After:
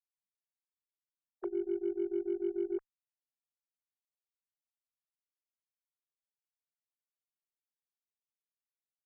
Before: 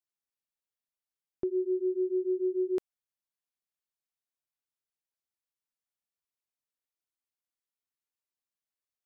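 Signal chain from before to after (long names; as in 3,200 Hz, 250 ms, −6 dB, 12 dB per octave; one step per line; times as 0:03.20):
three sine waves on the formant tracks
harmonic generator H 8 −36 dB, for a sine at −20 dBFS
level −5 dB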